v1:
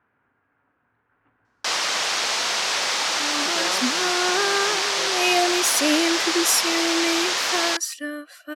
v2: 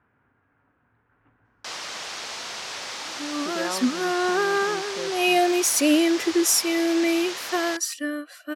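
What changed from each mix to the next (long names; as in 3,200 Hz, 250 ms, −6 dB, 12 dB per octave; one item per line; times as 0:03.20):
first sound −11.0 dB
master: add low-shelf EQ 220 Hz +9 dB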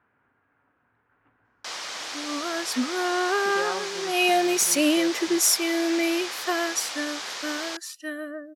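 first sound: add notch filter 2,700 Hz, Q 30
second sound: entry −1.05 s
master: add low-shelf EQ 220 Hz −9 dB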